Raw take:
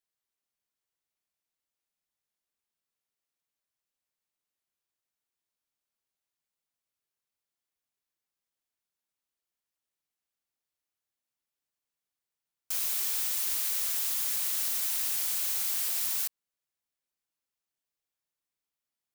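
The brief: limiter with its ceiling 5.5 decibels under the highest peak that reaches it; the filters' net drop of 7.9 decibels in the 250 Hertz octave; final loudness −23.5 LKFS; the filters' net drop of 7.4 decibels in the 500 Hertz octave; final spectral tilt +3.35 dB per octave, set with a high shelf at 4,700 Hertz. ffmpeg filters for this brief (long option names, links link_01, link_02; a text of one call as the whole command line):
ffmpeg -i in.wav -af "equalizer=frequency=250:width_type=o:gain=-8,equalizer=frequency=500:width_type=o:gain=-8,highshelf=frequency=4700:gain=-4,volume=9.5dB,alimiter=limit=-16dB:level=0:latency=1" out.wav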